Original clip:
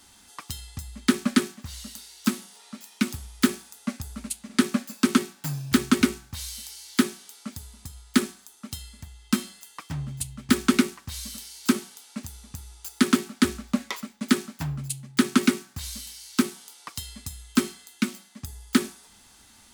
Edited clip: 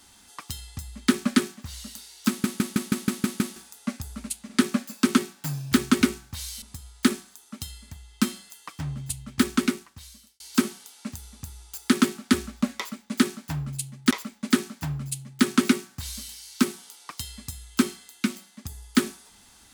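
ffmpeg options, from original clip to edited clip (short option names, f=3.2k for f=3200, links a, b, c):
-filter_complex "[0:a]asplit=12[a][b][c][d][e][f][g][h][i][j][k][l];[a]atrim=end=2.442[m];[b]atrim=start=2.278:end=2.442[n];[c]atrim=start=2.278:end=2.442[o];[d]atrim=start=2.278:end=2.442[p];[e]atrim=start=2.278:end=2.442[q];[f]atrim=start=2.278:end=2.442[r];[g]atrim=start=2.278:end=2.442[s];[h]atrim=start=2.278:end=2.442[t];[i]atrim=start=3.558:end=6.622[u];[j]atrim=start=7.728:end=11.51,asetpts=PTS-STARTPTS,afade=t=out:st=2.662:d=1.12[v];[k]atrim=start=11.51:end=15.222,asetpts=PTS-STARTPTS,afade=t=in:d=0.004:c=hsin[w];[l]atrim=start=13.888[x];[m][n]acrossfade=d=0.004:c1=hsin:c2=hsin[y];[y][o]acrossfade=d=0.004:c1=hsin:c2=hsin[z];[z][p]acrossfade=d=0.004:c1=hsin:c2=hsin[aa];[aa][q]acrossfade=d=0.004:c1=hsin:c2=hsin[ab];[ab][r]acrossfade=d=0.004:c1=hsin:c2=hsin[ac];[ac][s]acrossfade=d=0.004:c1=hsin:c2=hsin[ad];[ad][t]acrossfade=d=0.004:c1=hsin:c2=hsin[ae];[ae][u]acrossfade=d=0.004:c1=hsin:c2=hsin[af];[v][w]concat=n=2:v=0:a=1[ag];[af][ag]acrossfade=d=0.004:c1=hsin:c2=hsin[ah];[ah][x]acrossfade=d=0.004:c1=hsin:c2=hsin"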